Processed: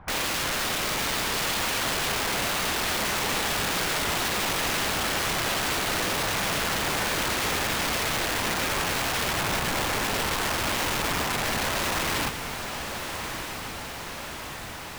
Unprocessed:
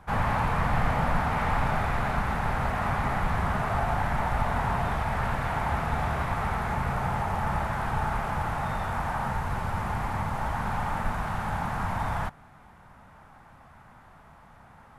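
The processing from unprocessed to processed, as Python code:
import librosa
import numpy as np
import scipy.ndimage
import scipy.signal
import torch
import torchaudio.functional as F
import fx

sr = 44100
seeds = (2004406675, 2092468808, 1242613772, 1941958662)

p1 = fx.air_absorb(x, sr, metres=280.0)
p2 = (np.mod(10.0 ** (27.5 / 20.0) * p1 + 1.0, 2.0) - 1.0) / 10.0 ** (27.5 / 20.0)
p3 = p2 + fx.echo_diffused(p2, sr, ms=1284, feedback_pct=67, wet_db=-8.0, dry=0)
y = p3 * 10.0 ** (4.5 / 20.0)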